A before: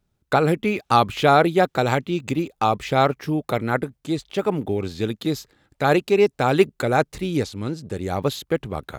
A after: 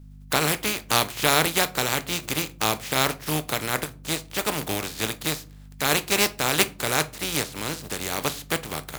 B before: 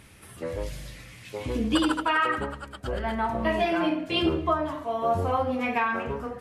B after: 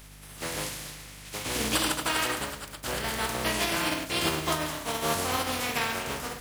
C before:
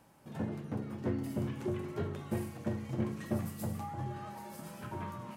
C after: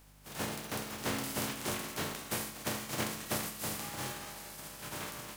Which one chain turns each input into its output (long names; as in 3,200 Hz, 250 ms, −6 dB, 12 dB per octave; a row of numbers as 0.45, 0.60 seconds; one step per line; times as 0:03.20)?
compressing power law on the bin magnitudes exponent 0.35
high-pass filter 62 Hz
mains hum 50 Hz, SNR 22 dB
in parallel at −2 dB: downward compressor, threshold −29 dBFS
on the sum: rectangular room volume 210 cubic metres, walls furnished, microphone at 0.42 metres
level −6 dB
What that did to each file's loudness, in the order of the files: −2.5, −2.0, +1.0 LU